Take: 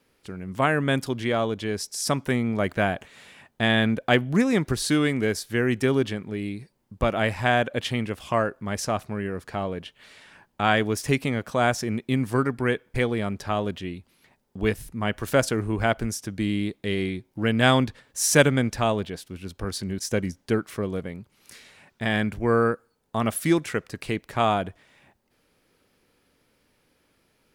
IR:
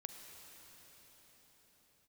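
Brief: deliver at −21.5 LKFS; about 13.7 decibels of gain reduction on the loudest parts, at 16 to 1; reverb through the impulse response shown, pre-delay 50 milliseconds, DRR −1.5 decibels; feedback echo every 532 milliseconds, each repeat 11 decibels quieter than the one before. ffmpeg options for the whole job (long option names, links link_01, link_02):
-filter_complex "[0:a]acompressor=threshold=-24dB:ratio=16,aecho=1:1:532|1064|1596:0.282|0.0789|0.0221,asplit=2[link_01][link_02];[1:a]atrim=start_sample=2205,adelay=50[link_03];[link_02][link_03]afir=irnorm=-1:irlink=0,volume=5dB[link_04];[link_01][link_04]amix=inputs=2:normalize=0,volume=5.5dB"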